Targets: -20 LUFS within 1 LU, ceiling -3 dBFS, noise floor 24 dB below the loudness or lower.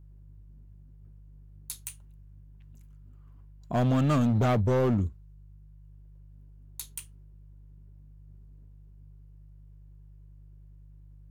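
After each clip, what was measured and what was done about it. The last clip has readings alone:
clipped samples 1.5%; clipping level -20.0 dBFS; hum 50 Hz; highest harmonic 150 Hz; hum level -49 dBFS; loudness -27.5 LUFS; peak level -20.0 dBFS; loudness target -20.0 LUFS
-> clip repair -20 dBFS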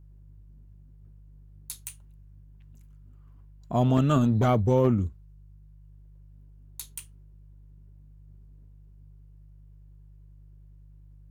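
clipped samples 0.0%; hum 50 Hz; highest harmonic 150 Hz; hum level -48 dBFS
-> de-hum 50 Hz, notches 3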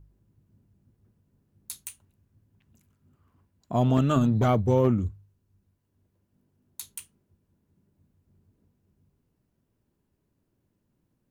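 hum not found; loudness -25.0 LUFS; peak level -10.0 dBFS; loudness target -20.0 LUFS
-> trim +5 dB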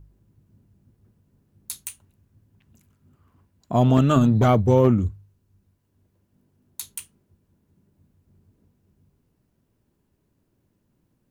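loudness -20.0 LUFS; peak level -5.0 dBFS; noise floor -71 dBFS

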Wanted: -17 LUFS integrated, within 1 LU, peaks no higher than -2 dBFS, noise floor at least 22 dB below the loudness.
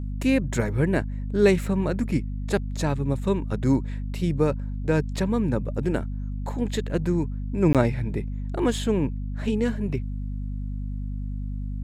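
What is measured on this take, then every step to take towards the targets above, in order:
dropouts 1; longest dropout 17 ms; hum 50 Hz; highest harmonic 250 Hz; hum level -28 dBFS; loudness -26.0 LUFS; peak level -7.0 dBFS; loudness target -17.0 LUFS
-> interpolate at 7.73 s, 17 ms; hum notches 50/100/150/200/250 Hz; trim +9 dB; peak limiter -2 dBFS

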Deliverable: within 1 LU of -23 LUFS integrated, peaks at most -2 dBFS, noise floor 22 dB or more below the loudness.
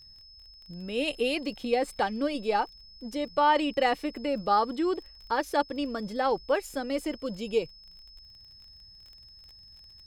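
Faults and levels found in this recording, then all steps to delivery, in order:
tick rate 25 per s; steady tone 5.2 kHz; tone level -50 dBFS; loudness -29.0 LUFS; peak level -12.5 dBFS; loudness target -23.0 LUFS
-> de-click; band-stop 5.2 kHz, Q 30; trim +6 dB

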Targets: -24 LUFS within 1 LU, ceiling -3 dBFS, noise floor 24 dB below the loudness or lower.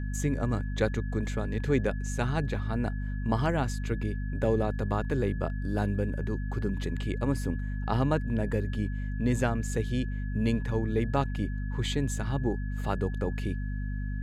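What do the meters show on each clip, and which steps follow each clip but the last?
hum 50 Hz; highest harmonic 250 Hz; hum level -30 dBFS; steady tone 1.7 kHz; tone level -47 dBFS; loudness -30.5 LUFS; peak level -12.0 dBFS; loudness target -24.0 LUFS
-> de-hum 50 Hz, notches 5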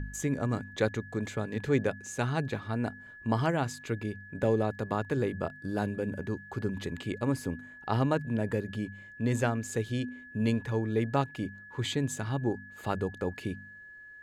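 hum not found; steady tone 1.7 kHz; tone level -47 dBFS
-> band-stop 1.7 kHz, Q 30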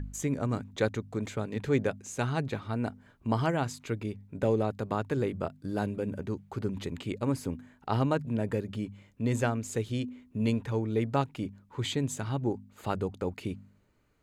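steady tone not found; loudness -32.5 LUFS; peak level -13.5 dBFS; loudness target -24.0 LUFS
-> trim +8.5 dB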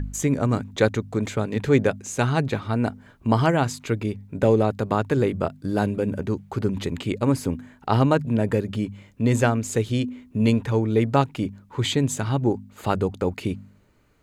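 loudness -24.0 LUFS; peak level -5.0 dBFS; noise floor -55 dBFS

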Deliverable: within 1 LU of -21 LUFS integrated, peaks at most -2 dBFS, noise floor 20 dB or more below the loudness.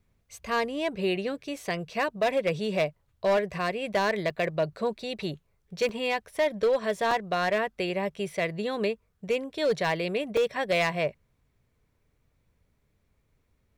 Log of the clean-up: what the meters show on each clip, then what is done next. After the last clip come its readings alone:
clipped samples 1.0%; clipping level -19.0 dBFS; dropouts 4; longest dropout 3.5 ms; loudness -28.5 LUFS; peak level -19.0 dBFS; loudness target -21.0 LUFS
-> clip repair -19 dBFS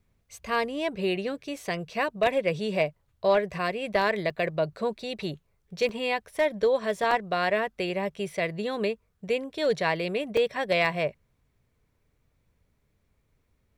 clipped samples 0.0%; dropouts 4; longest dropout 3.5 ms
-> interpolate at 4.30/5.89/7.11/10.37 s, 3.5 ms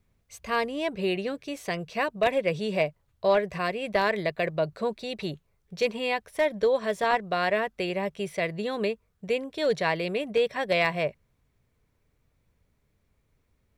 dropouts 0; loudness -28.0 LUFS; peak level -10.0 dBFS; loudness target -21.0 LUFS
-> trim +7 dB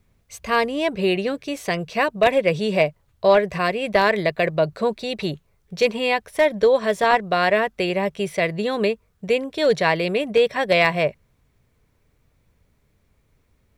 loudness -21.0 LUFS; peak level -3.0 dBFS; noise floor -65 dBFS

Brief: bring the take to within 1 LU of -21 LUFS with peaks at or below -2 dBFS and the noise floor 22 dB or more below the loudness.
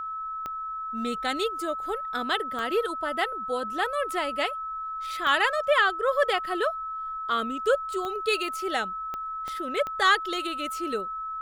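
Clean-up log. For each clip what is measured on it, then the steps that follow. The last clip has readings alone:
clicks found 7; steady tone 1.3 kHz; tone level -31 dBFS; loudness -27.5 LUFS; peak level -8.5 dBFS; loudness target -21.0 LUFS
-> de-click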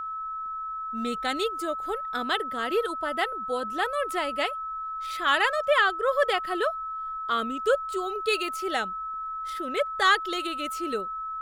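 clicks found 0; steady tone 1.3 kHz; tone level -31 dBFS
-> band-stop 1.3 kHz, Q 30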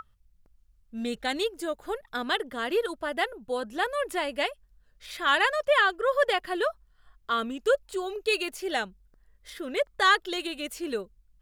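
steady tone not found; loudness -28.0 LUFS; peak level -9.5 dBFS; loudness target -21.0 LUFS
-> trim +7 dB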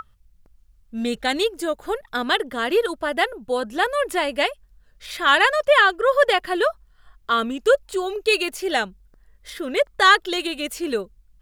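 loudness -21.0 LUFS; peak level -2.5 dBFS; noise floor -58 dBFS

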